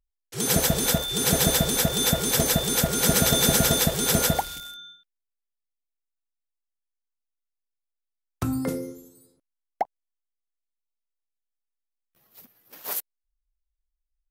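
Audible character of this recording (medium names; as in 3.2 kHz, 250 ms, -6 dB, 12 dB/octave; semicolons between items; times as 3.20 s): noise floor -84 dBFS; spectral tilt -3.0 dB/octave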